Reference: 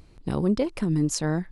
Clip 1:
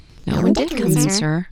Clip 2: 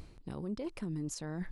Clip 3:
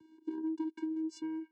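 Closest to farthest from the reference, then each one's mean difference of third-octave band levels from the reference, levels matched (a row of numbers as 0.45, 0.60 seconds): 2, 1, 3; 3.5, 6.0, 11.5 decibels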